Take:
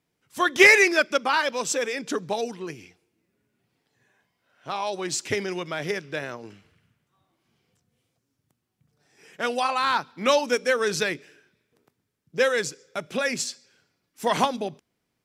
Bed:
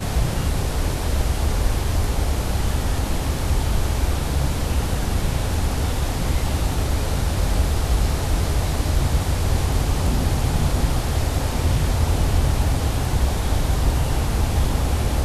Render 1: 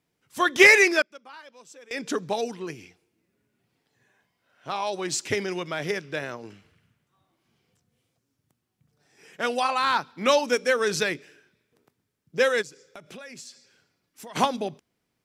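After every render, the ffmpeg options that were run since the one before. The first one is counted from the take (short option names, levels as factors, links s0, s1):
-filter_complex "[0:a]asplit=3[s0][s1][s2];[s0]afade=t=out:st=12.61:d=0.02[s3];[s1]acompressor=threshold=0.00891:ratio=5:attack=3.2:release=140:knee=1:detection=peak,afade=t=in:st=12.61:d=0.02,afade=t=out:st=14.35:d=0.02[s4];[s2]afade=t=in:st=14.35:d=0.02[s5];[s3][s4][s5]amix=inputs=3:normalize=0,asplit=3[s6][s7][s8];[s6]atrim=end=1.02,asetpts=PTS-STARTPTS,afade=t=out:st=0.87:d=0.15:c=log:silence=0.0749894[s9];[s7]atrim=start=1.02:end=1.91,asetpts=PTS-STARTPTS,volume=0.075[s10];[s8]atrim=start=1.91,asetpts=PTS-STARTPTS,afade=t=in:d=0.15:c=log:silence=0.0749894[s11];[s9][s10][s11]concat=n=3:v=0:a=1"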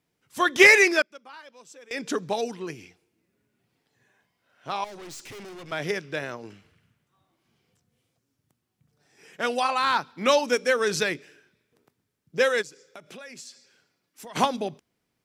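-filter_complex "[0:a]asettb=1/sr,asplit=3[s0][s1][s2];[s0]atrim=end=4.844[s3];[s1]atrim=start=4.84:end=5.72,asetpts=PTS-STARTPTS,afade=t=in:d=0.004:c=qsin,afade=t=out:st=0.876:d=0.004:c=qsin,aeval=exprs='(tanh(100*val(0)+0.3)-tanh(0.3))/100':c=same[s4];[s2]atrim=start=5.716[s5];[s3][s4]acrossfade=d=0.004:c1=hsin:c2=qsin[s6];[s6][s5]acrossfade=d=0.004:c1=qsin:c2=hsin,asettb=1/sr,asplit=3[s7][s8][s9];[s7]atrim=end=12.414[s10];[s8]atrim=start=12.41:end=14.25,asetpts=PTS-STARTPTS,afade=t=in:d=0.004:c=qsin,afade=t=out:st=1.836:d=0.004:c=qsin,highpass=f=170:p=1[s11];[s9]atrim=start=14.246[s12];[s10][s11]acrossfade=d=0.004:c1=hsin:c2=qsin[s13];[s13][s12]acrossfade=d=0.004:c1=qsin:c2=hsin"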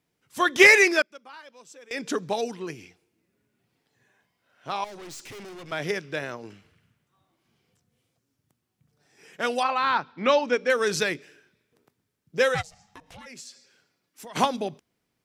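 -filter_complex "[0:a]asettb=1/sr,asplit=3[s0][s1][s2];[s0]atrim=end=9.634[s3];[s1]atrim=start=9.63:end=10.7,asetpts=PTS-STARTPTS,afade=t=in:d=0.004:c=qsin,afade=t=out:st=1.066:d=0.004:c=qsin,lowpass=3400[s4];[s2]atrim=start=10.696[s5];[s3][s4]acrossfade=d=0.004:c1=hsin:c2=qsin[s6];[s6][s5]acrossfade=d=0.004:c1=qsin:c2=hsin,asplit=3[s7][s8][s9];[s7]afade=t=out:st=12.54:d=0.02[s10];[s8]aeval=exprs='val(0)*sin(2*PI*320*n/s)':c=same,afade=t=in:st=12.54:d=0.02,afade=t=out:st=13.25:d=0.02[s11];[s9]afade=t=in:st=13.25:d=0.02[s12];[s10][s11][s12]amix=inputs=3:normalize=0"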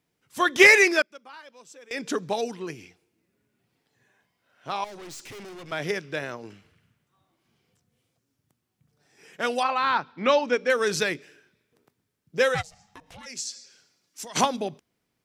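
-filter_complex "[0:a]asettb=1/sr,asplit=3[s0][s1][s2];[s0]atrim=end=13.234[s3];[s1]atrim=start=13.23:end=14.41,asetpts=PTS-STARTPTS,afade=t=in:d=0.004:c=qsin,afade=t=out:st=1.176:d=0.004:c=qsin,equalizer=f=6100:t=o:w=1.4:g=12[s4];[s2]atrim=start=14.406[s5];[s3][s4]acrossfade=d=0.004:c1=hsin:c2=qsin[s6];[s6][s5]acrossfade=d=0.004:c1=qsin:c2=hsin"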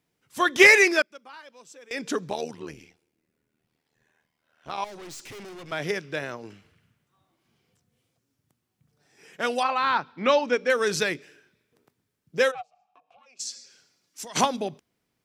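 -filter_complex "[0:a]asettb=1/sr,asplit=3[s0][s1][s2];[s0]atrim=end=2.304[s3];[s1]atrim=start=2.3:end=4.78,asetpts=PTS-STARTPTS,afade=t=in:d=0.004:c=qsin,afade=t=out:st=2.476:d=0.004:c=qsin,tremolo=f=78:d=0.824[s4];[s2]atrim=start=4.776[s5];[s3][s4]acrossfade=d=0.004:c1=hsin:c2=qsin[s6];[s6][s5]acrossfade=d=0.004:c1=qsin:c2=hsin,asplit=3[s7][s8][s9];[s7]afade=t=out:st=12.5:d=0.02[s10];[s8]asplit=3[s11][s12][s13];[s11]bandpass=f=730:t=q:w=8,volume=1[s14];[s12]bandpass=f=1090:t=q:w=8,volume=0.501[s15];[s13]bandpass=f=2440:t=q:w=8,volume=0.355[s16];[s14][s15][s16]amix=inputs=3:normalize=0,afade=t=in:st=12.5:d=0.02,afade=t=out:st=13.39:d=0.02[s17];[s9]afade=t=in:st=13.39:d=0.02[s18];[s10][s17][s18]amix=inputs=3:normalize=0"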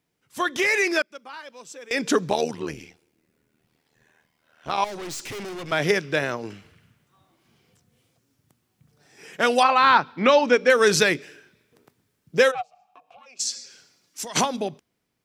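-af "alimiter=limit=0.2:level=0:latency=1:release=147,dynaudnorm=f=210:g=11:m=2.37"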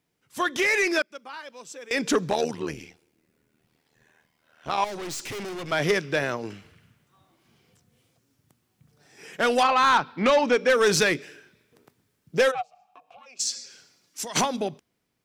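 -af "asoftclip=type=tanh:threshold=0.211"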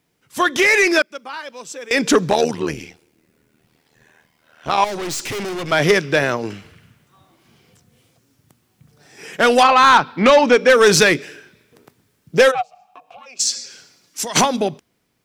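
-af "volume=2.66"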